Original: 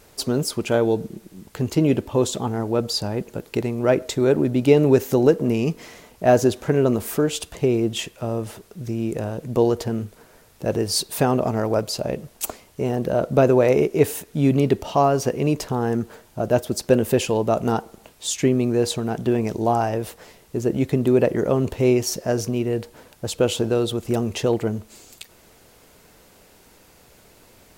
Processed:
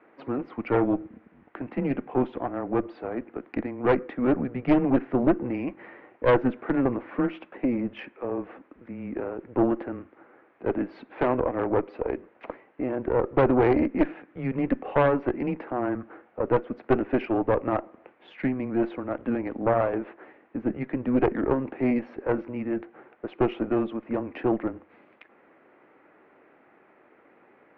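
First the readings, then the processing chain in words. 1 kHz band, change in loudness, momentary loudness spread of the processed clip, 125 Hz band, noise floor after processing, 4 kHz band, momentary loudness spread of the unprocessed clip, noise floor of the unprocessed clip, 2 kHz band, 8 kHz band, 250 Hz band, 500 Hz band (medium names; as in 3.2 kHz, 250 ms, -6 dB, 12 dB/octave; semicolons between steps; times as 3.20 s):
-3.5 dB, -5.5 dB, 12 LU, -10.5 dB, -59 dBFS, under -15 dB, 11 LU, -53 dBFS, -2.5 dB, under -40 dB, -3.5 dB, -6.5 dB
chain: mistuned SSB -130 Hz 400–2300 Hz; Chebyshev shaper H 4 -10 dB, 5 -17 dB, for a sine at -5 dBFS; trim -5.5 dB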